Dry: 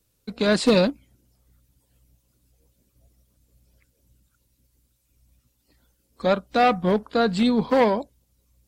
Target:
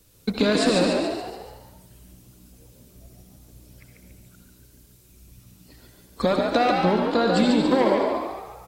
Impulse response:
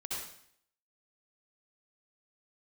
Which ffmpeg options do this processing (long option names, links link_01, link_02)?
-filter_complex "[0:a]acompressor=threshold=-31dB:ratio=8,asplit=7[link_01][link_02][link_03][link_04][link_05][link_06][link_07];[link_02]adelay=142,afreqshift=61,volume=-4dB[link_08];[link_03]adelay=284,afreqshift=122,volume=-10dB[link_09];[link_04]adelay=426,afreqshift=183,volume=-16dB[link_10];[link_05]adelay=568,afreqshift=244,volume=-22.1dB[link_11];[link_06]adelay=710,afreqshift=305,volume=-28.1dB[link_12];[link_07]adelay=852,afreqshift=366,volume=-34.1dB[link_13];[link_01][link_08][link_09][link_10][link_11][link_12][link_13]amix=inputs=7:normalize=0,asplit=2[link_14][link_15];[1:a]atrim=start_sample=2205[link_16];[link_15][link_16]afir=irnorm=-1:irlink=0,volume=-2.5dB[link_17];[link_14][link_17]amix=inputs=2:normalize=0,volume=8.5dB"